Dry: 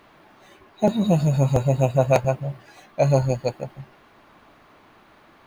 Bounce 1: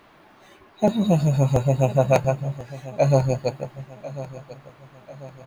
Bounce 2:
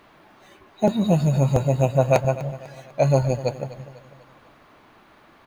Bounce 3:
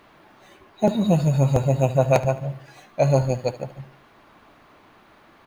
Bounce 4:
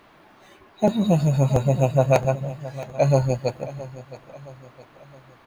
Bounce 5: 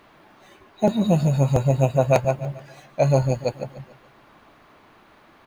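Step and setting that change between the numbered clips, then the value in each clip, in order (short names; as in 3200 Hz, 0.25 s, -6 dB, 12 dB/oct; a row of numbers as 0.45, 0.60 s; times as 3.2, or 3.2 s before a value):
feedback echo, time: 1043, 248, 73, 668, 144 ms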